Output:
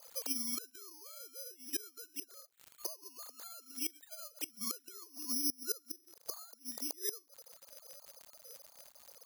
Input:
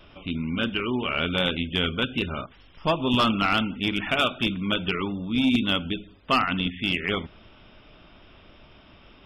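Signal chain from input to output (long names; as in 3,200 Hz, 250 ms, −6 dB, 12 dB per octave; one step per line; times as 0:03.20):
three sine waves on the formant tracks
low-pass filter 2,100 Hz 24 dB per octave, from 0:05.32 1,300 Hz
downward compressor 4 to 1, threshold −24 dBFS, peak gain reduction 11.5 dB
four-pole ladder high-pass 410 Hz, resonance 50%
surface crackle 320 per second −56 dBFS
gate with flip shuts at −37 dBFS, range −26 dB
bad sample-rate conversion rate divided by 8×, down none, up zero stuff
level +2.5 dB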